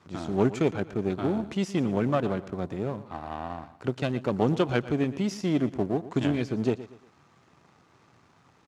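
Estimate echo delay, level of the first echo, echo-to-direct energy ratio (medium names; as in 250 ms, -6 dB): 118 ms, -15.5 dB, -15.0 dB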